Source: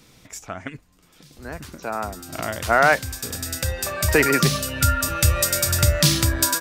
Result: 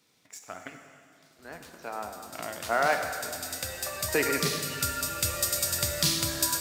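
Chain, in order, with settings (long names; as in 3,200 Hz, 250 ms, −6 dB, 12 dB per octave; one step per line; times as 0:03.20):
mu-law and A-law mismatch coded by A
dynamic equaliser 1,600 Hz, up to −4 dB, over −33 dBFS, Q 0.92
high-pass filter 340 Hz 6 dB per octave
parametric band 4,200 Hz +2.5 dB 0.21 octaves
dense smooth reverb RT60 2.3 s, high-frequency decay 0.95×, DRR 4.5 dB
level −6.5 dB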